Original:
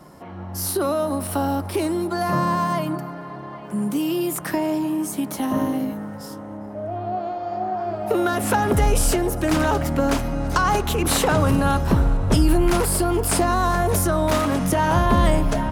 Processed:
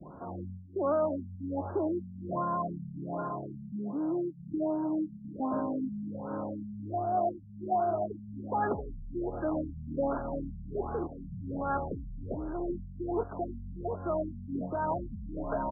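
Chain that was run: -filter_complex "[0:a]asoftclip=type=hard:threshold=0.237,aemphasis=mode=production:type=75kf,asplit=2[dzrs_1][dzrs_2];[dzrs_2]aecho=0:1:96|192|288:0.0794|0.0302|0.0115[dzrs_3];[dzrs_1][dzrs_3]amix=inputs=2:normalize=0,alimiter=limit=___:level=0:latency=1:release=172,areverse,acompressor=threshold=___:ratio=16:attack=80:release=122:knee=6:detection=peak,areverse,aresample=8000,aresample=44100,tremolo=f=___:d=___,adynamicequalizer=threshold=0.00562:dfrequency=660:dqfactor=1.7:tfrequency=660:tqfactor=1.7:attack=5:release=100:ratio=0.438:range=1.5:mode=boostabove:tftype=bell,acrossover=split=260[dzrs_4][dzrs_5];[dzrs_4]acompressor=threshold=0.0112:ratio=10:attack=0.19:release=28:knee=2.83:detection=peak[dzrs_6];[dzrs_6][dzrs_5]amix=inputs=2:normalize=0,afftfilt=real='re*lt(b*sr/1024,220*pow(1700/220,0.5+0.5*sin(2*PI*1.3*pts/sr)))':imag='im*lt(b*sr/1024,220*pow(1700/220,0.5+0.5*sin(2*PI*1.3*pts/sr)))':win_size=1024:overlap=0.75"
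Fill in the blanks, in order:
0.335, 0.0355, 2.2, 0.31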